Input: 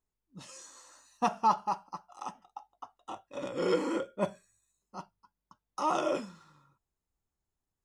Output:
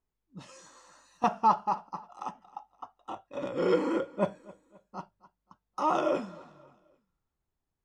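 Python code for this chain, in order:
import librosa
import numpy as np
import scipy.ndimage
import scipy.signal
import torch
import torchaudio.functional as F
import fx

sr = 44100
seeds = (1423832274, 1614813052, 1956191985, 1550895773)

p1 = fx.lowpass(x, sr, hz=2400.0, slope=6)
p2 = p1 + fx.echo_feedback(p1, sr, ms=264, feedback_pct=40, wet_db=-22.0, dry=0)
p3 = fx.band_squash(p2, sr, depth_pct=70, at=(0.66, 1.24))
y = p3 * 10.0 ** (3.0 / 20.0)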